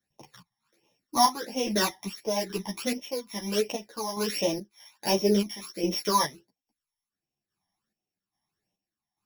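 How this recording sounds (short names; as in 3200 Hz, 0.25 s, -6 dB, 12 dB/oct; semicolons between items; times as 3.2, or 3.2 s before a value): a buzz of ramps at a fixed pitch in blocks of 8 samples; phasing stages 12, 1.4 Hz, lowest notch 440–1500 Hz; chopped level 1.2 Hz, depth 60%, duty 50%; a shimmering, thickened sound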